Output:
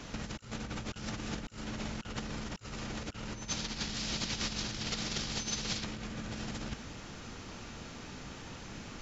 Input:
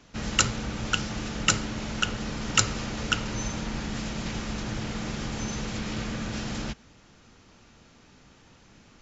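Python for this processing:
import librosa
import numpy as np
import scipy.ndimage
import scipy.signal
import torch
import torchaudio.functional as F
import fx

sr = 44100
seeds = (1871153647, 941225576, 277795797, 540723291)

y = fx.over_compress(x, sr, threshold_db=-38.0, ratio=-0.5)
y = fx.peak_eq(y, sr, hz=4600.0, db=13.0, octaves=1.6, at=(3.48, 5.84))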